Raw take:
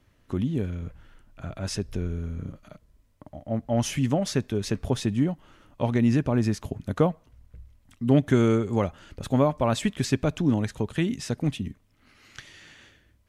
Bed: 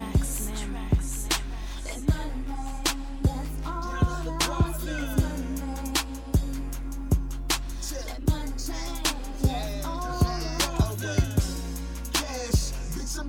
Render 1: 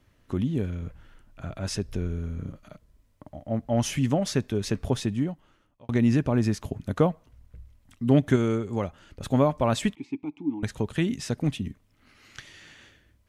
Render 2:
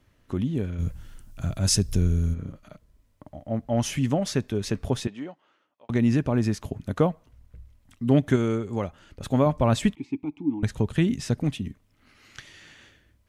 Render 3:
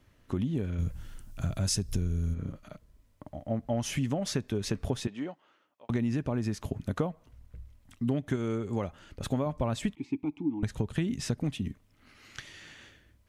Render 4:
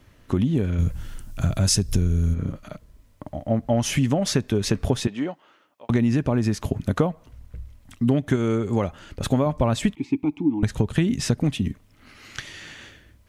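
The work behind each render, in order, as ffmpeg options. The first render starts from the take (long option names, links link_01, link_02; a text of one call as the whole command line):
ffmpeg -i in.wav -filter_complex "[0:a]asettb=1/sr,asplit=3[link_01][link_02][link_03];[link_01]atrim=end=9.954[link_04];[link_02]atrim=start=9.95:end=10.63,asetpts=PTS-STARTPTS,afade=type=in:duration=0.004:curve=qsin,afade=type=out:start_time=0.676:duration=0.004:curve=qsin,asplit=3[link_05][link_06][link_07];[link_05]bandpass=frequency=300:width_type=q:width=8,volume=0dB[link_08];[link_06]bandpass=frequency=870:width_type=q:width=8,volume=-6dB[link_09];[link_07]bandpass=frequency=2240:width_type=q:width=8,volume=-9dB[link_10];[link_08][link_09][link_10]amix=inputs=3:normalize=0[link_11];[link_03]atrim=start=10.626[link_12];[link_04][link_11]acrossfade=duration=0.004:curve1=hsin:curve2=qsin[link_13];[link_13][link_12]acrossfade=duration=0.004:curve1=qsin:curve2=hsin,asplit=4[link_14][link_15][link_16][link_17];[link_14]atrim=end=5.89,asetpts=PTS-STARTPTS,afade=type=out:start_time=4.91:duration=0.98[link_18];[link_15]atrim=start=5.89:end=8.362,asetpts=PTS-STARTPTS,afade=type=in:duration=0.004:curve=hsin[link_19];[link_16]atrim=start=8.358:end=9.212,asetpts=PTS-STARTPTS,volume=-4dB[link_20];[link_17]atrim=start=9.208[link_21];[link_18][link_19]concat=n=2:v=0:a=1[link_22];[link_22][link_20]acrossfade=duration=0.004:curve1=hsin:curve2=hsin[link_23];[link_23][link_21]acrossfade=duration=0.004:curve1=hsin:curve2=hsin" out.wav
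ffmpeg -i in.wav -filter_complex "[0:a]asplit=3[link_01][link_02][link_03];[link_01]afade=type=out:start_time=0.78:duration=0.02[link_04];[link_02]bass=frequency=250:gain=9,treble=frequency=4000:gain=15,afade=type=in:start_time=0.78:duration=0.02,afade=type=out:start_time=2.33:duration=0.02[link_05];[link_03]afade=type=in:start_time=2.33:duration=0.02[link_06];[link_04][link_05][link_06]amix=inputs=3:normalize=0,asettb=1/sr,asplit=3[link_07][link_08][link_09];[link_07]atrim=end=5.074[link_10];[link_08]atrim=start=5.07:end=5.9,asetpts=PTS-STARTPTS,afade=type=in:duration=0.004:curve=qsin,afade=type=out:start_time=0.826:duration=0.004:curve=qsin,highpass=420,lowpass=4800[link_11];[link_09]atrim=start=5.896[link_12];[link_10][link_11]acrossfade=duration=0.004:curve1=hsin:curve2=qsin[link_13];[link_13][link_12]acrossfade=duration=0.004:curve1=qsin:curve2=hsin,asettb=1/sr,asplit=3[link_14][link_15][link_16];[link_14]atrim=end=9.464[link_17];[link_15]atrim=start=9.46:end=11.43,asetpts=PTS-STARTPTS,afade=type=in:duration=0.004:curve=qsin,afade=type=out:start_time=1.966:duration=0.004:curve=qsin,lowshelf=frequency=200:gain=7.5[link_18];[link_16]atrim=start=11.426[link_19];[link_17][link_18]acrossfade=duration=0.004:curve1=hsin:curve2=qsin[link_20];[link_20][link_19]acrossfade=duration=0.004:curve1=qsin:curve2=hsin" out.wav
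ffmpeg -i in.wav -af "acompressor=threshold=-26dB:ratio=6" out.wav
ffmpeg -i in.wav -af "volume=9dB" out.wav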